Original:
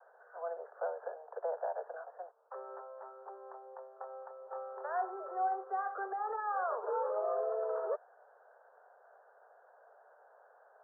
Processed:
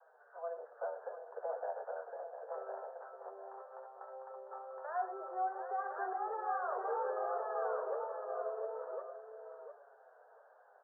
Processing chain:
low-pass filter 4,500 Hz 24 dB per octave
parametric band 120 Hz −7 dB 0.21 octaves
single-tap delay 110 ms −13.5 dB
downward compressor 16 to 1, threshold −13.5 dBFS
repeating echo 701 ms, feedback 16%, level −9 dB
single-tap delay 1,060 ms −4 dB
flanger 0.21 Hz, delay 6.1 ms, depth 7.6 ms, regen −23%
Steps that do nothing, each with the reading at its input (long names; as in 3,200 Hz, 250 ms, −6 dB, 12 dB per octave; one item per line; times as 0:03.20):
low-pass filter 4,500 Hz: nothing at its input above 1,800 Hz
parametric band 120 Hz: nothing at its input below 340 Hz
downward compressor, threshold −13.5 dBFS: peak of its input −24.0 dBFS